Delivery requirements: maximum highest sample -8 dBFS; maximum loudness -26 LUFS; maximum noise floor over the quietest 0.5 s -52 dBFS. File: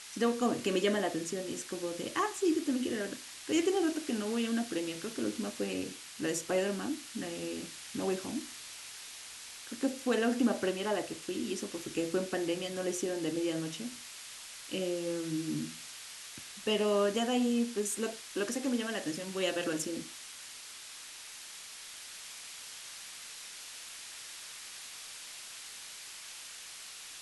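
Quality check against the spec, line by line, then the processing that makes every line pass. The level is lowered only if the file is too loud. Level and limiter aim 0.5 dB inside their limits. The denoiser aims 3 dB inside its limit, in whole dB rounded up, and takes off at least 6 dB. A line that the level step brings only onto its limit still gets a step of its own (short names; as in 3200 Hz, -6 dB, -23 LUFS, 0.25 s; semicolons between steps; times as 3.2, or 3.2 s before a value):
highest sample -17.5 dBFS: OK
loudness -35.0 LUFS: OK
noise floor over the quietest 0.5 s -48 dBFS: fail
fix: denoiser 7 dB, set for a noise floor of -48 dBFS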